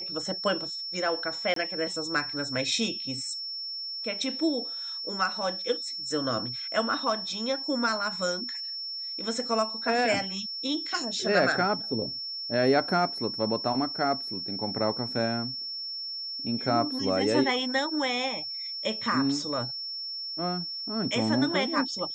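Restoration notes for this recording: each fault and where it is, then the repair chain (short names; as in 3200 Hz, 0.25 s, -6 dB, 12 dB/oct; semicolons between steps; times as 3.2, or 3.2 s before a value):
tone 5400 Hz -33 dBFS
1.54–1.56 gap 23 ms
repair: notch 5400 Hz, Q 30; interpolate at 1.54, 23 ms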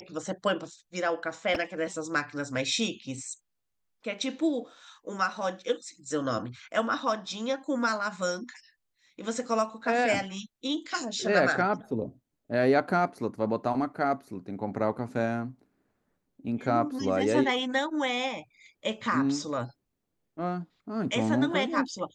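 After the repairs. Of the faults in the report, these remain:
none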